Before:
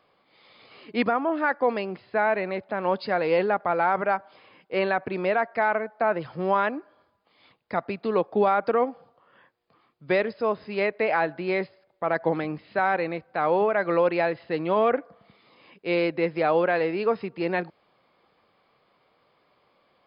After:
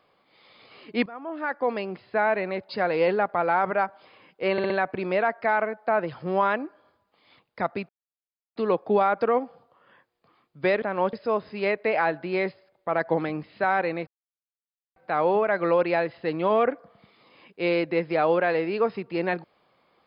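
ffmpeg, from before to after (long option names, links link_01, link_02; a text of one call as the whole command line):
ffmpeg -i in.wav -filter_complex "[0:a]asplit=10[link_01][link_02][link_03][link_04][link_05][link_06][link_07][link_08][link_09][link_10];[link_01]atrim=end=1.06,asetpts=PTS-STARTPTS,afade=type=out:start_time=1.056:duration=0.004:curve=hsin:silence=0.0668344[link_11];[link_02]atrim=start=1.06:end=2.692,asetpts=PTS-STARTPTS,afade=type=in:duration=1.13:curve=qsin:silence=0.0668344[link_12];[link_03]atrim=start=2.998:end=4.892[link_13];[link_04]atrim=start=4.828:end=4.892[link_14];[link_05]atrim=start=4.828:end=4.892[link_15];[link_06]atrim=start=4.828:end=8.02,asetpts=PTS-STARTPTS,afade=type=out:start_time=3.188:duration=0.004:curve=hsin,apad=pad_dur=0.67[link_16];[link_07]atrim=start=8.02:end=10.282,asetpts=PTS-STARTPTS,afade=type=in:duration=0.004:curve=hsin[link_17];[link_08]atrim=start=2.688:end=3.002[link_18];[link_09]atrim=start=10.278:end=13.22,asetpts=PTS-STARTPTS,afade=type=out:start_time=2.938:duration=0.004:curve=hsin,apad=pad_dur=0.89[link_19];[link_10]atrim=start=13.22,asetpts=PTS-STARTPTS,afade=type=in:duration=0.004:curve=hsin[link_20];[link_11][link_12]concat=n=2:v=0:a=1[link_21];[link_21][link_13]acrossfade=duration=0.004:curve1=hsin:curve2=hsin[link_22];[link_22][link_14]acrossfade=duration=0.004:curve1=hsin:curve2=hsin[link_23];[link_23][link_15]acrossfade=duration=0.004:curve1=hsin:curve2=hsin[link_24];[link_16][link_17]concat=n=2:v=0:a=1[link_25];[link_24][link_25]acrossfade=duration=0.004:curve1=hsin:curve2=hsin[link_26];[link_26][link_18]acrossfade=duration=0.004:curve1=hsin:curve2=hsin[link_27];[link_19][link_20]concat=n=2:v=0:a=1[link_28];[link_27][link_28]acrossfade=duration=0.004:curve1=hsin:curve2=hsin" out.wav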